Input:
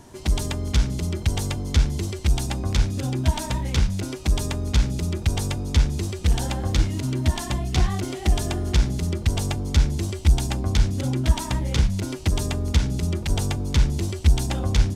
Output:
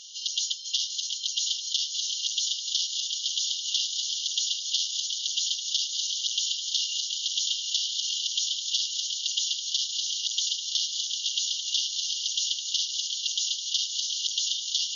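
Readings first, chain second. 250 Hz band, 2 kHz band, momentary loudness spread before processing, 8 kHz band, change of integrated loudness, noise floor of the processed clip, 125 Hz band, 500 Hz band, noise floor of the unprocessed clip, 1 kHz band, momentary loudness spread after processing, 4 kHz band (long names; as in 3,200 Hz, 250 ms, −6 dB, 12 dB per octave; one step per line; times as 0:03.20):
below −40 dB, −10.5 dB, 3 LU, +7.0 dB, −2.0 dB, −35 dBFS, below −40 dB, below −40 dB, −34 dBFS, below −40 dB, 2 LU, +9.5 dB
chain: mid-hump overdrive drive 30 dB, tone 4,400 Hz, clips at −5.5 dBFS
feedback echo with a long and a short gap by turns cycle 1,210 ms, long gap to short 1.5 to 1, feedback 66%, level −7.5 dB
brick-wall band-pass 2,800–6,900 Hz
level −5.5 dB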